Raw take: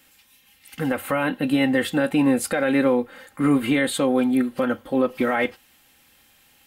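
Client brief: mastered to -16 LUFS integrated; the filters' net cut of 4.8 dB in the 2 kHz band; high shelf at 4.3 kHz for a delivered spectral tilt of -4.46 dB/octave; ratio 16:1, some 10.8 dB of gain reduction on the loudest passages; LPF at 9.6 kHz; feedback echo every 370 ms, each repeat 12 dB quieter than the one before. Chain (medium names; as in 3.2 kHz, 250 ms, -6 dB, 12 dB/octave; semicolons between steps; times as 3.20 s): low-pass 9.6 kHz; peaking EQ 2 kHz -7.5 dB; treble shelf 4.3 kHz +8 dB; compression 16:1, threshold -26 dBFS; feedback delay 370 ms, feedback 25%, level -12 dB; trim +15 dB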